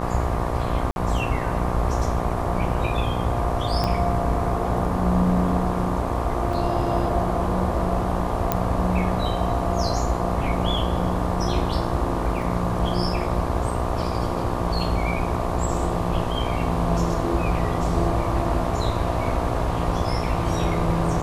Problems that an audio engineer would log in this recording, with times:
buzz 60 Hz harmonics 20 -28 dBFS
0.91–0.96 s: dropout 51 ms
3.84 s: pop -11 dBFS
6.53 s: dropout 3.6 ms
8.52 s: pop -6 dBFS
12.42 s: dropout 2.6 ms

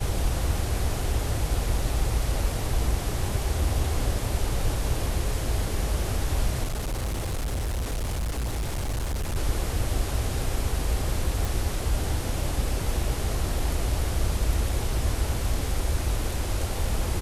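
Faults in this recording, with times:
6.63–9.37 s: clipped -25 dBFS
11.45 s: pop

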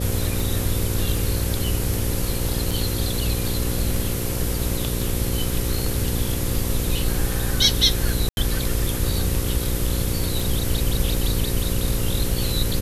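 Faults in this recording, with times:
buzz 60 Hz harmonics 9 -27 dBFS
tick 78 rpm
2.71 s: dropout 4.3 ms
8.29–8.37 s: dropout 81 ms

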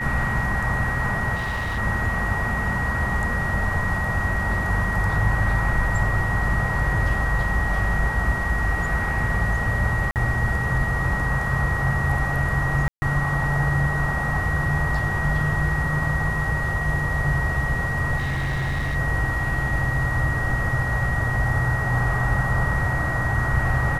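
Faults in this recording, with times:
whine 1.9 kHz -26 dBFS
1.35–1.79 s: clipped -22.5 dBFS
10.11–10.16 s: dropout 48 ms
12.88–13.02 s: dropout 140 ms
18.17–18.96 s: clipped -21.5 dBFS

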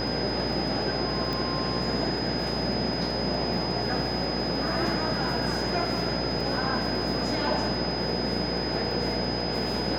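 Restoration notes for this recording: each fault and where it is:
buzz 60 Hz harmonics 15 -33 dBFS
crackle 21 per s -36 dBFS
whine 5 kHz -32 dBFS
1.33 s: pop

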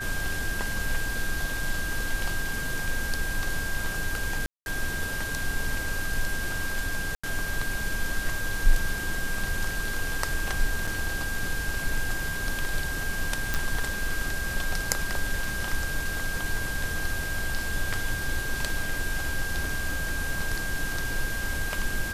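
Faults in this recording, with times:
whine 1.6 kHz -32 dBFS
4.46–4.66 s: dropout 201 ms
7.15–7.24 s: dropout 85 ms
10.87–10.88 s: dropout 5.2 ms
13.54 s: pop

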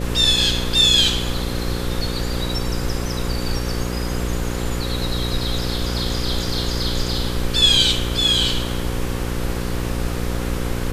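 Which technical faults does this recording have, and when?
buzz 60 Hz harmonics 9 -25 dBFS

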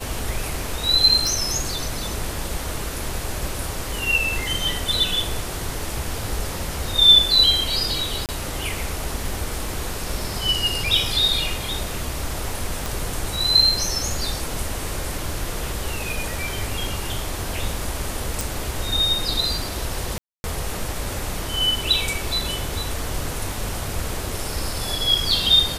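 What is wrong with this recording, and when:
1.27 s: pop
8.26–8.29 s: dropout 28 ms
12.86 s: pop
18.41 s: pop
20.18–20.44 s: dropout 261 ms

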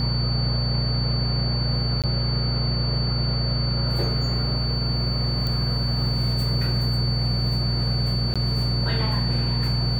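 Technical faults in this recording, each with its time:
hum 60 Hz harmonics 4 -27 dBFS
whine 4.5 kHz -28 dBFS
2.02–2.04 s: dropout 17 ms
5.47 s: pop -15 dBFS
8.34–8.36 s: dropout 16 ms

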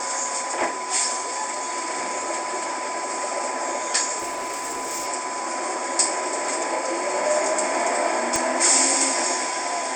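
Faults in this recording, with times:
whine 1 kHz -30 dBFS
4.18–5.08 s: clipped -24.5 dBFS
8.36 s: pop -8 dBFS

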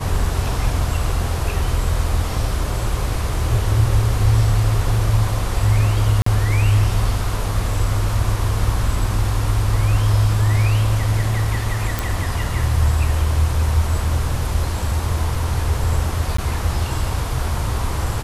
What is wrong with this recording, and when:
6.22–6.26 s: dropout 44 ms
11.99 s: pop
16.37–16.38 s: dropout 14 ms

